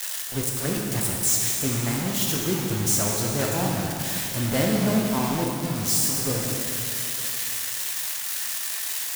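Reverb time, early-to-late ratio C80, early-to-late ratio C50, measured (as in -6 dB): 2.7 s, 1.5 dB, 0.5 dB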